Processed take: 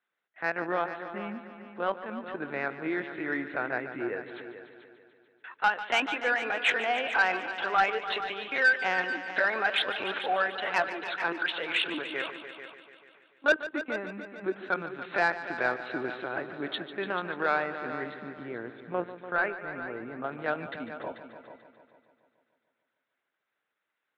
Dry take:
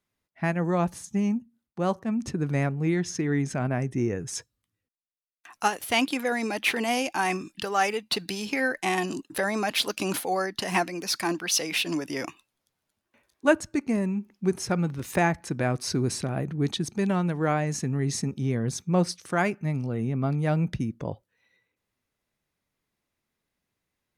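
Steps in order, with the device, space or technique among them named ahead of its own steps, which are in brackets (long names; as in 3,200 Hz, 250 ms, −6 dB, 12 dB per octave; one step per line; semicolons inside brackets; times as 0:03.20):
talking toy (linear-prediction vocoder at 8 kHz pitch kept; high-pass filter 440 Hz 12 dB per octave; parametric band 1,500 Hz +10 dB 0.42 octaves; soft clipping −15 dBFS, distortion −15 dB)
0:18.14–0:20.24: high-frequency loss of the air 470 metres
echo machine with several playback heads 146 ms, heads all three, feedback 40%, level −14 dB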